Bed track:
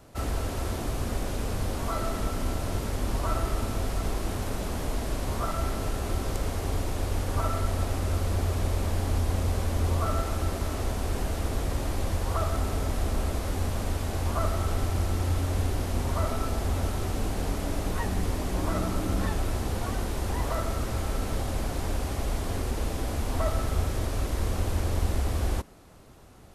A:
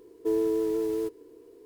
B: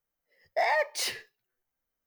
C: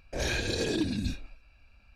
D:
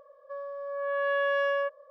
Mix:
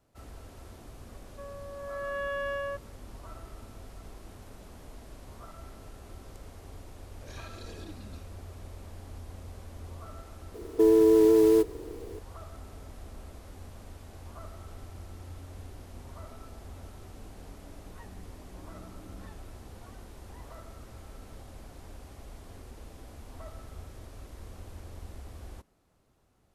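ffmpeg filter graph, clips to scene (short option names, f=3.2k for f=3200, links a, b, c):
-filter_complex "[0:a]volume=-17.5dB[a];[1:a]alimiter=level_in=21dB:limit=-1dB:release=50:level=0:latency=1[b];[4:a]atrim=end=1.9,asetpts=PTS-STARTPTS,volume=-6.5dB,afade=t=in:d=0.004:c=hsin,afade=t=out:st=1.896:d=0.004:c=hsin,adelay=1080[c];[3:a]atrim=end=1.95,asetpts=PTS-STARTPTS,volume=-17.5dB,afade=t=in:d=0.004:c=hsin,afade=t=out:st=1.946:d=0.004:c=hsin,adelay=7080[d];[b]atrim=end=1.65,asetpts=PTS-STARTPTS,volume=-12dB,afade=t=in:d=0.004:c=hsin,afade=t=out:st=1.646:d=0.004:c=hsin,adelay=10540[e];[a][c][d][e]amix=inputs=4:normalize=0"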